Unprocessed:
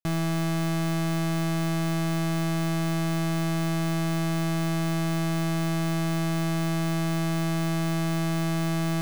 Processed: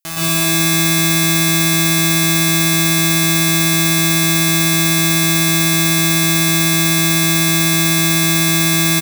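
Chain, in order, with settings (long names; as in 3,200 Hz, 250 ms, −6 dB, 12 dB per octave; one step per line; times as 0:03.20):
spectral tilt +4 dB per octave
multi-tap delay 48/56/88/198/281 ms −7.5/−7.5/−19/−18.5/−8 dB
dense smooth reverb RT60 1.2 s, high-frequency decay 0.85×, pre-delay 105 ms, DRR −9.5 dB
level +2 dB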